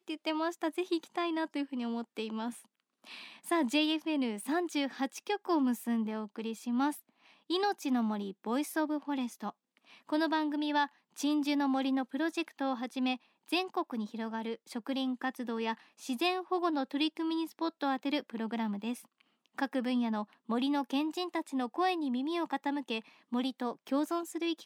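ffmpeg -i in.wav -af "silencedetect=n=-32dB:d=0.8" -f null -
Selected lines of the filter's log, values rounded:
silence_start: 2.49
silence_end: 3.49 | silence_duration: 1.00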